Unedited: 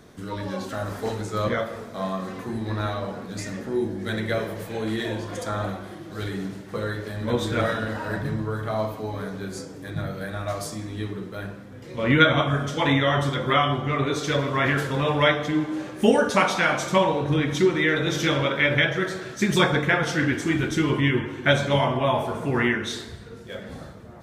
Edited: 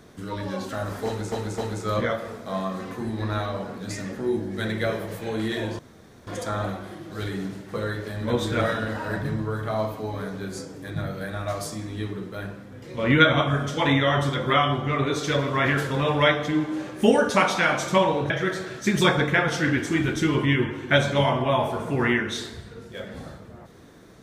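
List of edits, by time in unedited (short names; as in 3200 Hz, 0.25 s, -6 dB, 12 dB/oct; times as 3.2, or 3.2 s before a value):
1.06–1.32 loop, 3 plays
5.27 insert room tone 0.48 s
17.3–18.85 cut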